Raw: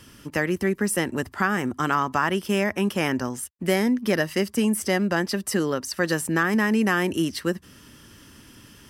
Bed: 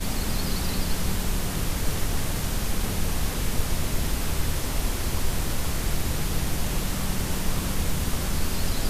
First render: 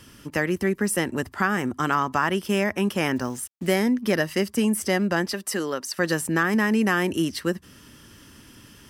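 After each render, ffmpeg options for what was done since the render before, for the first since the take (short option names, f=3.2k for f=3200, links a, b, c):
-filter_complex "[0:a]asettb=1/sr,asplit=3[a][b][c];[a]atrim=end=3.164[d];[b]atrim=start=3.16:end=3.79,asetpts=PTS-STARTPTS,afade=t=in:d=0.004:c=qsin,afade=t=out:st=0.626:d=0.004:c=qsin,acrusher=bits=7:mix=0:aa=0.5[e];[c]atrim=start=3.786[f];[d][e]acrossfade=d=0.004:c1=hsin:c2=qsin[g];[g][f]acrossfade=d=0.004:c1=qsin:c2=hsin,asettb=1/sr,asplit=3[h][i][j];[h]atrim=end=5.334[k];[i]atrim=start=5.33:end=5.99,asetpts=PTS-STARTPTS,afade=t=in:d=0.004:c=qsin,afade=t=out:st=0.656:d=0.004:c=qsin,highpass=f=400:p=1[l];[j]atrim=start=5.986[m];[k][l]acrossfade=d=0.004:c1=hsin:c2=qsin[n];[n][m]acrossfade=d=0.004:c1=qsin:c2=hsin"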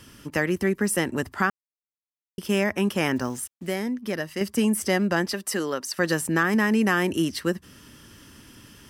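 -filter_complex "[0:a]asplit=5[a][b][c][d][e];[a]atrim=end=1.5,asetpts=PTS-STARTPTS,afade=t=out:st=1.496:d=0.004:c=hsin[f];[b]atrim=start=1.5:end=2.38,asetpts=PTS-STARTPTS,volume=0[g];[c]atrim=start=2.38:end=3.542,asetpts=PTS-STARTPTS,afade=t=in:d=0.004:c=hsin[h];[d]atrim=start=3.538:end=4.412,asetpts=PTS-STARTPTS,volume=-6.5dB[i];[e]atrim=start=4.408[j];[f][g][h]concat=n=3:v=0:a=1[k];[k][i]acrossfade=d=0.004:c1=hsin:c2=hsin[l];[l][j]acrossfade=d=0.004:c1=hsin:c2=hsin"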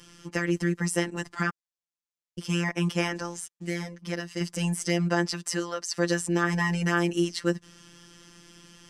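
-af "lowpass=f=7.1k:t=q:w=1.6,afftfilt=real='hypot(re,im)*cos(PI*b)':imag='0':win_size=1024:overlap=0.75"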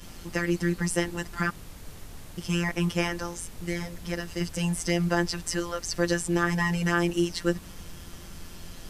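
-filter_complex "[1:a]volume=-17.5dB[a];[0:a][a]amix=inputs=2:normalize=0"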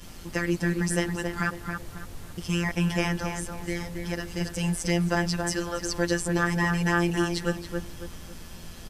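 -filter_complex "[0:a]asplit=2[a][b];[b]adelay=274,lowpass=f=2k:p=1,volume=-4.5dB,asplit=2[c][d];[d]adelay=274,lowpass=f=2k:p=1,volume=0.37,asplit=2[e][f];[f]adelay=274,lowpass=f=2k:p=1,volume=0.37,asplit=2[g][h];[h]adelay=274,lowpass=f=2k:p=1,volume=0.37,asplit=2[i][j];[j]adelay=274,lowpass=f=2k:p=1,volume=0.37[k];[a][c][e][g][i][k]amix=inputs=6:normalize=0"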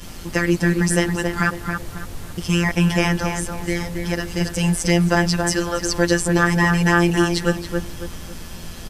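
-af "volume=8dB,alimiter=limit=-1dB:level=0:latency=1"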